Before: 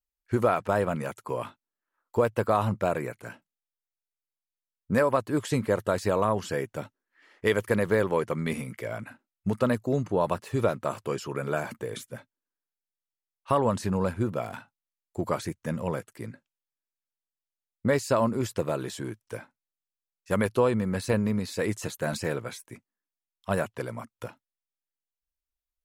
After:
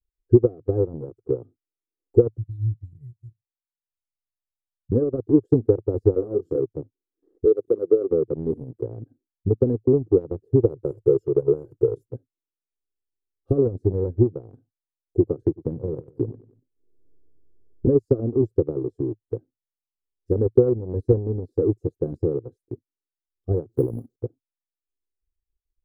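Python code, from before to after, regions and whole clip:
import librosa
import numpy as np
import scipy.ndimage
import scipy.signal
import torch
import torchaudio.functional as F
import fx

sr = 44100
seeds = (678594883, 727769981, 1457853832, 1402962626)

y = fx.chain(x, sr, fx.brickwall_bandstop(low_hz=150.0, high_hz=1800.0),
    fx.low_shelf(hz=69.0, db=-8.5), at=(2.37, 4.92))
y = fx.chain(y, sr, fx.highpass(hz=190.0, slope=6),
    fx.high_shelf(hz=12000.0, db=11.5),
    fx.doubler(ms=24.0, db=-4), at=(6.14, 6.6))
y = fx.chain(y, sr, fx.lower_of_two(delay_ms=0.34),
    fx.highpass(hz=310.0, slope=12),
    fx.notch(hz=2600.0, q=6.0), at=(7.45, 8.11))
y = fx.chain(y, sr, fx.high_shelf(hz=5800.0, db=9.5),
    fx.comb(ms=2.1, depth=0.92), at=(10.69, 12.07))
y = fx.chain(y, sr, fx.echo_feedback(ms=94, feedback_pct=33, wet_db=-12.0),
    fx.band_squash(depth_pct=100), at=(15.41, 17.87))
y = fx.chain(y, sr, fx.crossing_spikes(level_db=-31.0),
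    fx.resample_bad(factor=4, down='filtered', up='zero_stuff'),
    fx.peak_eq(hz=200.0, db=10.5, octaves=1.5), at=(23.69, 24.16))
y = scipy.signal.sosfilt(scipy.signal.cheby2(4, 40, 870.0, 'lowpass', fs=sr, output='sos'), y)
y = y + 0.86 * np.pad(y, (int(2.5 * sr / 1000.0), 0))[:len(y)]
y = fx.transient(y, sr, attack_db=6, sustain_db=-11)
y = y * librosa.db_to_amplitude(5.0)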